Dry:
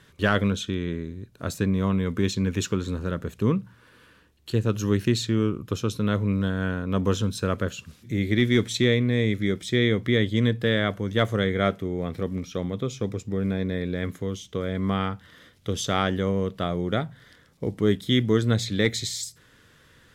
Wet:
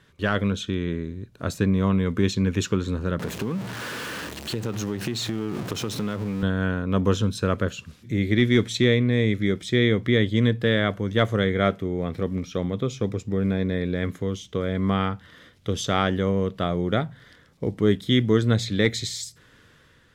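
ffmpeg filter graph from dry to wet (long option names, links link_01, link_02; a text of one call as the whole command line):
ffmpeg -i in.wav -filter_complex "[0:a]asettb=1/sr,asplit=3[link_01][link_02][link_03];[link_01]atrim=end=3.194[link_04];[link_02]atrim=start=3.19:end=6.43,asetpts=PTS-STARTPTS,afade=type=in:duration=0.004:curve=qsin,afade=type=out:start_time=3.236:duration=0.004:curve=qsin,aeval=exprs='val(0)+0.5*0.0355*sgn(val(0))':channel_layout=same,highpass=130,acompressor=threshold=-25dB:ratio=12:attack=3.2:release=140:knee=1:detection=peak[link_05];[link_03]atrim=start=6.426[link_06];[link_04][link_05]acrossfade=duration=0.004:curve1=hsin:curve2=qsin[link_07];[link_07][link_06]acrossfade=duration=0.004:curve1=qsin:curve2=hsin,dynaudnorm=framelen=110:gausssize=9:maxgain=5dB,highshelf=frequency=7500:gain=-7,volume=-2.5dB" out.wav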